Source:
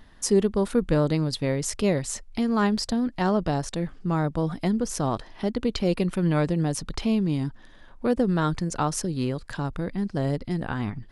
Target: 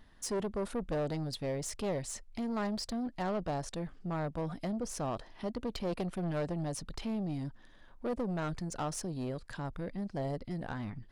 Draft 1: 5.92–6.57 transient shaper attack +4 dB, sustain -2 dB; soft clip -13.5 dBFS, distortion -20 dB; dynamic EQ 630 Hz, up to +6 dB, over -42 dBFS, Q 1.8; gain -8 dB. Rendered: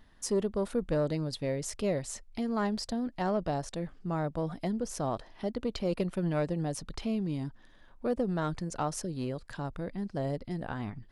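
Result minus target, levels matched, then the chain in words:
soft clip: distortion -11 dB
5.92–6.57 transient shaper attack +4 dB, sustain -2 dB; soft clip -23.5 dBFS, distortion -9 dB; dynamic EQ 630 Hz, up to +6 dB, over -42 dBFS, Q 1.8; gain -8 dB

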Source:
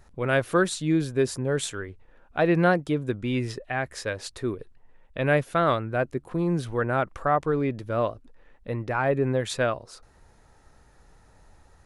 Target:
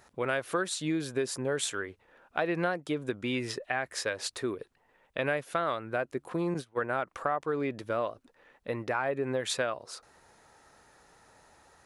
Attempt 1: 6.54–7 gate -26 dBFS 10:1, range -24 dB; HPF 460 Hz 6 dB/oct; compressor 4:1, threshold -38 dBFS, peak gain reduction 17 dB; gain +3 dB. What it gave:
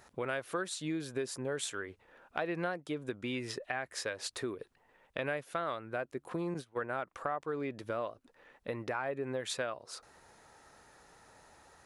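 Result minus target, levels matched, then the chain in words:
compressor: peak gain reduction +5.5 dB
6.54–7 gate -26 dBFS 10:1, range -24 dB; HPF 460 Hz 6 dB/oct; compressor 4:1, threshold -30.5 dBFS, peak gain reduction 11.5 dB; gain +3 dB

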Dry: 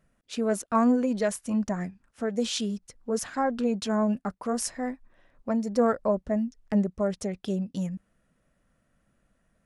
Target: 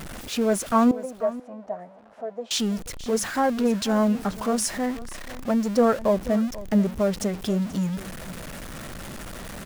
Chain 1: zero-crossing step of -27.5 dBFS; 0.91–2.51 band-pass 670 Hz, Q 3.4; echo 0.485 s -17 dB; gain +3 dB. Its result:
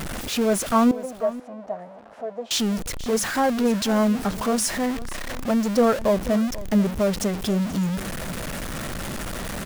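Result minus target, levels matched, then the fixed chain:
zero-crossing step: distortion +5 dB
zero-crossing step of -34 dBFS; 0.91–2.51 band-pass 670 Hz, Q 3.4; echo 0.485 s -17 dB; gain +3 dB

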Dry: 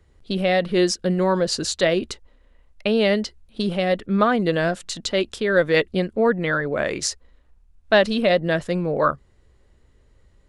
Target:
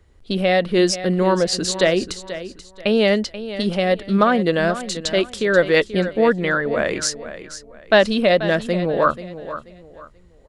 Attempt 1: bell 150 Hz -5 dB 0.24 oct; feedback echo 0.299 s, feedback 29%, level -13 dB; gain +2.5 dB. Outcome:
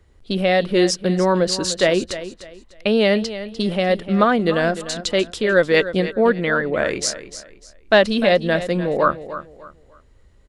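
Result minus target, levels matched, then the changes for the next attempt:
echo 0.185 s early
change: feedback echo 0.484 s, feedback 29%, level -13 dB

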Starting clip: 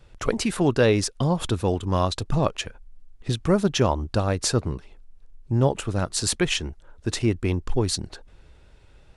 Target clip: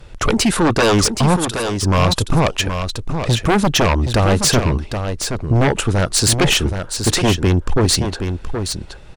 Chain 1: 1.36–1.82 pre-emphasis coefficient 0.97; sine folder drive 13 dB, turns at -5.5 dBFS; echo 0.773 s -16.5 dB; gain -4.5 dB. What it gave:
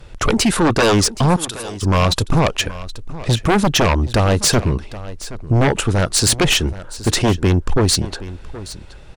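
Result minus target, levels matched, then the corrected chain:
echo-to-direct -9 dB
1.36–1.82 pre-emphasis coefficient 0.97; sine folder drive 13 dB, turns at -5.5 dBFS; echo 0.773 s -7.5 dB; gain -4.5 dB

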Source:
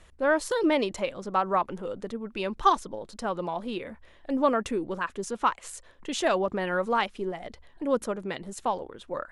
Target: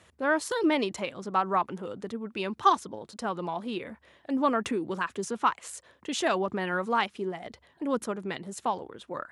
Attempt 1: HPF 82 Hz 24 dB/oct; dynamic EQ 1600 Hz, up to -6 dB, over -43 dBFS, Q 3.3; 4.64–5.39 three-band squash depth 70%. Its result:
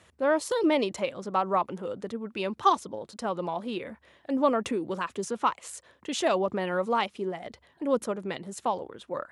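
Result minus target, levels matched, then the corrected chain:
2000 Hz band -4.0 dB
HPF 82 Hz 24 dB/oct; dynamic EQ 550 Hz, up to -6 dB, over -43 dBFS, Q 3.3; 4.64–5.39 three-band squash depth 70%

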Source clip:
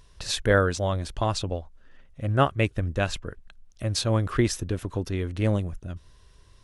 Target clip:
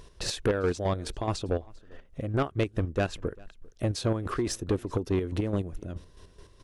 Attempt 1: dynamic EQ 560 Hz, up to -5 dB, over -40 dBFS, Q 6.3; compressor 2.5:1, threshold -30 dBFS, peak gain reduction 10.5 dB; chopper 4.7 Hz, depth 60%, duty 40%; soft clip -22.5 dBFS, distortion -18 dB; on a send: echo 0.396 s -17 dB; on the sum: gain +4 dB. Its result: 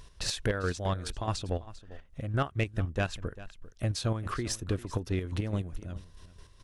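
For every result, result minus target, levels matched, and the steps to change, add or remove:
echo-to-direct +8 dB; 500 Hz band -3.5 dB
change: echo 0.396 s -25 dB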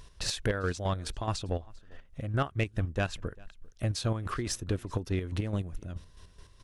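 500 Hz band -3.5 dB
add after compressor: bell 390 Hz +9 dB 1.6 oct

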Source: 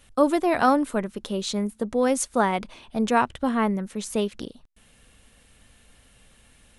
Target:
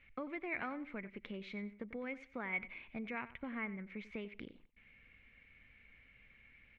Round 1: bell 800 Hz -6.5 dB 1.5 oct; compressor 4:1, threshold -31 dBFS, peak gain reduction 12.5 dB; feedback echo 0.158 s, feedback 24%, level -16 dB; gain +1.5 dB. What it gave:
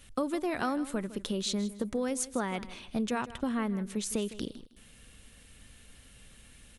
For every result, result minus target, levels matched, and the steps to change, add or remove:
echo 65 ms late; 2000 Hz band -9.0 dB
change: feedback echo 93 ms, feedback 24%, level -16 dB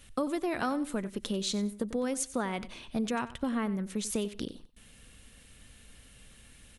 2000 Hz band -9.5 dB
add after compressor: ladder low-pass 2300 Hz, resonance 85%

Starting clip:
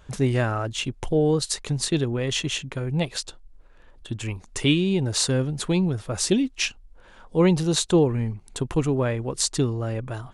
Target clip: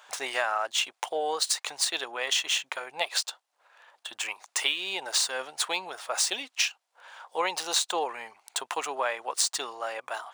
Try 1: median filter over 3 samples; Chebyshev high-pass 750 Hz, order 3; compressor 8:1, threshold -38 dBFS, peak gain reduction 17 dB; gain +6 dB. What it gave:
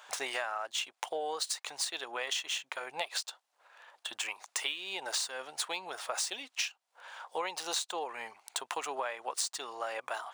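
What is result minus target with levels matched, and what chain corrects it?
compressor: peak gain reduction +8.5 dB
median filter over 3 samples; Chebyshev high-pass 750 Hz, order 3; compressor 8:1, threshold -28.5 dBFS, peak gain reduction 8.5 dB; gain +6 dB

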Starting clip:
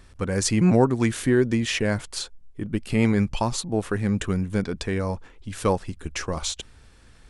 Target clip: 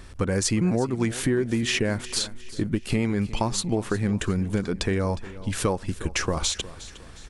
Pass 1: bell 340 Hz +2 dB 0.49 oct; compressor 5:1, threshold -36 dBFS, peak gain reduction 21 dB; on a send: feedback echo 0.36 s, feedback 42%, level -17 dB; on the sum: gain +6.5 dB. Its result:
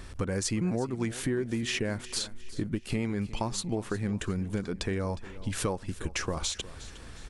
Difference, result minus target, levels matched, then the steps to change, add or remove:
compressor: peak gain reduction +6.5 dB
change: compressor 5:1, threshold -28 dBFS, peak gain reduction 14.5 dB

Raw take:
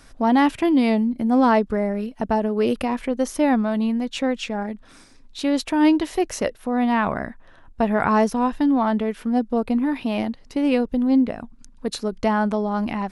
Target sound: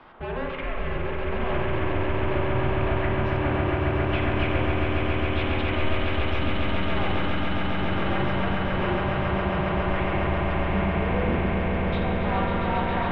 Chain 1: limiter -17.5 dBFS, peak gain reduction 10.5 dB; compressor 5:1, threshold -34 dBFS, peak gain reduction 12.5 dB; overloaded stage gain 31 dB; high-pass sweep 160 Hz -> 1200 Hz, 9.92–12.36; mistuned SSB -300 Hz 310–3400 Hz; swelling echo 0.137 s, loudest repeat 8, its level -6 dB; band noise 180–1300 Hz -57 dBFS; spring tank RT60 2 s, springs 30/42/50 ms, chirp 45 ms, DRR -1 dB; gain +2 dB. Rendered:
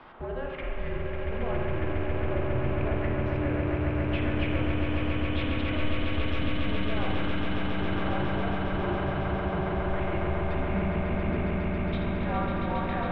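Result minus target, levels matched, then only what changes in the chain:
compressor: peak gain reduction +12.5 dB
remove: compressor 5:1, threshold -34 dBFS, peak gain reduction 12.5 dB

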